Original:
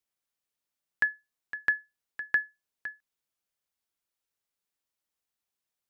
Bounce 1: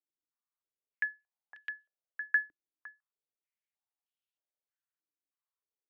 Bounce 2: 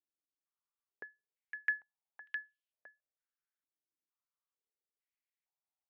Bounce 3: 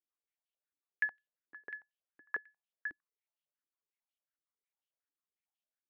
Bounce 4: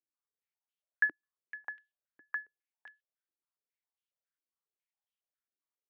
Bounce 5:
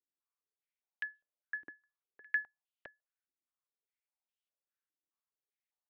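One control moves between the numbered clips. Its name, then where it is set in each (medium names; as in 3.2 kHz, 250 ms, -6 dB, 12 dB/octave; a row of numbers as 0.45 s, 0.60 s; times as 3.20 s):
step-sequenced band-pass, rate: 3.2 Hz, 2.2 Hz, 11 Hz, 7.3 Hz, 4.9 Hz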